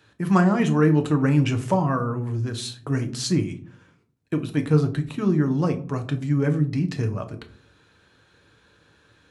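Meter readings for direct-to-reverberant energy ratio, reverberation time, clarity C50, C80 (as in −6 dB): 5.0 dB, 0.50 s, 14.5 dB, 18.0 dB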